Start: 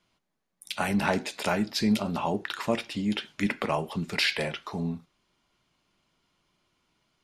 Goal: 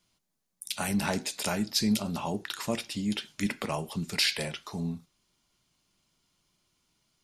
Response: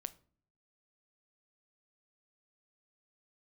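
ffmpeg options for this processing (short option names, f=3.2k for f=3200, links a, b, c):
-af "bass=f=250:g=5,treble=f=4k:g=13,volume=-5.5dB"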